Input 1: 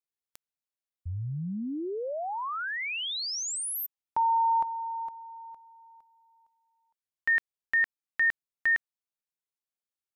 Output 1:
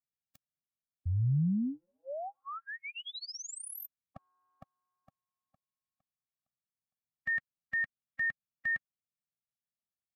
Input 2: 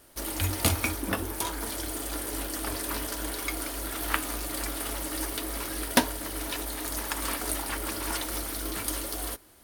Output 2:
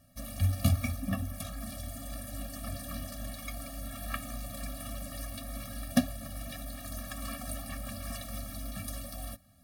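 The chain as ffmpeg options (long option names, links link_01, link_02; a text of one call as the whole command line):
ffmpeg -i in.wav -af "equalizer=frequency=140:width=0.52:gain=13.5,afftfilt=real='re*eq(mod(floor(b*sr/1024/270),2),0)':imag='im*eq(mod(floor(b*sr/1024/270),2),0)':win_size=1024:overlap=0.75,volume=-7.5dB" out.wav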